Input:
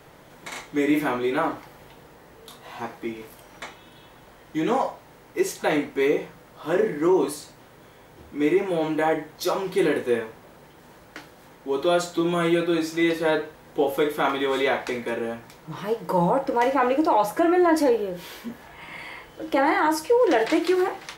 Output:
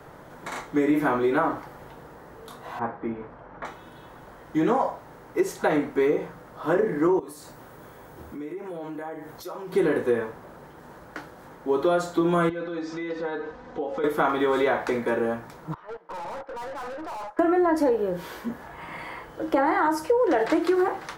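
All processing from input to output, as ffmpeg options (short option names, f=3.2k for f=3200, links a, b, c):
-filter_complex "[0:a]asettb=1/sr,asplit=3[a][b][c];[a]atrim=end=2.794[d];[b]atrim=start=2.79:end=3.65,asetpts=PTS-STARTPTS,afade=t=in:d=0.004:c=qsin,afade=t=out:st=0.856:d=0.004:c=qsin,lowpass=1.7k,equalizer=f=340:w=7.1:g=-6.5,asplit=2[e][f];[f]adelay=44,volume=-13dB[g];[e][g]amix=inputs=2:normalize=0,atrim=end_sample=37926[h];[c]atrim=start=3.646[i];[d][h]acrossfade=d=0.004:c1=hsin:c2=qsin[j];[j][i]acrossfade=d=0.004:c1=qsin:c2=hsin,asettb=1/sr,asplit=3[k][l][m];[k]atrim=end=7.194[n];[l]atrim=start=7.19:end=9.73,asetpts=PTS-STARTPTS,afade=t=in:d=0.004:c=qsin,afade=t=out:st=2.536:d=0.004:c=qsin,highshelf=f=10k:g=10.5,acompressor=threshold=-38dB:ratio=5:attack=3.2:release=140:knee=1:detection=peak[o];[m]atrim=start=9.726[p];[n][o]acrossfade=d=0.004:c1=hsin:c2=qsin[q];[q][p]acrossfade=d=0.004:c1=qsin:c2=hsin,asettb=1/sr,asplit=3[r][s][t];[r]atrim=end=12.494[u];[s]atrim=start=12.49:end=14.04,asetpts=PTS-STARTPTS,afade=t=in:d=0.004:c=qsin,afade=t=out:st=1.546:d=0.004:c=qsin,lowpass=f=6k:w=0.5412,lowpass=f=6k:w=1.3066,acompressor=threshold=-34dB:ratio=4:attack=3.2:release=140:knee=1:detection=peak,aecho=1:1:4:0.54,atrim=end_sample=68355[v];[t]atrim=start=14.036[w];[u][v]acrossfade=d=0.004:c1=hsin:c2=qsin[x];[x][w]acrossfade=d=0.004:c1=qsin:c2=hsin,asettb=1/sr,asplit=3[y][z][aa];[y]atrim=end=15.744[ab];[z]atrim=start=15.74:end=17.39,asetpts=PTS-STARTPTS,afade=t=in:d=0.004:c=qsin,afade=t=out:st=1.646:d=0.004:c=qsin,agate=range=-14dB:threshold=-28dB:ratio=16:release=100:detection=peak,highpass=560,lowpass=2.9k,aeval=exprs='(tanh(79.4*val(0)+0.25)-tanh(0.25))/79.4':c=same[ac];[aa]atrim=start=17.386[ad];[ab][ac]acrossfade=d=0.004:c1=hsin:c2=qsin[ae];[ae][ad]acrossfade=d=0.004:c1=qsin:c2=hsin,highshelf=f=1.9k:t=q:w=1.5:g=-6.5,acrossover=split=130[af][ag];[ag]acompressor=threshold=-22dB:ratio=6[ah];[af][ah]amix=inputs=2:normalize=0,volume=3.5dB"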